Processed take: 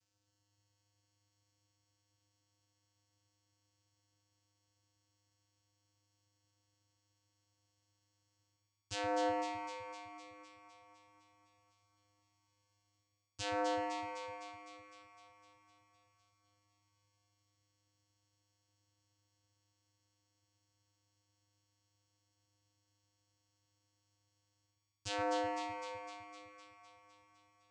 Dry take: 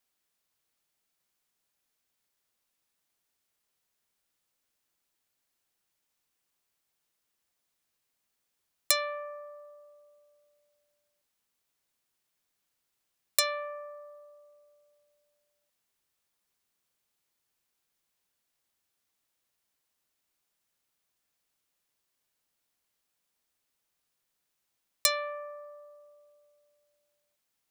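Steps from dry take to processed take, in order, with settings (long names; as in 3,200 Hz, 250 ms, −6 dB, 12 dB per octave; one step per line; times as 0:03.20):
lower of the sound and its delayed copy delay 9.7 ms
bass and treble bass +4 dB, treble +13 dB
reversed playback
downward compressor 16 to 1, threshold −35 dBFS, peak gain reduction 26.5 dB
reversed playback
flanger 0.12 Hz, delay 0.6 ms, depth 4.9 ms, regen +86%
channel vocoder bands 8, square 102 Hz
on a send: delay that swaps between a low-pass and a high-pass 127 ms, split 1,900 Hz, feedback 81%, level −2.5 dB
on the sum: level +6 dB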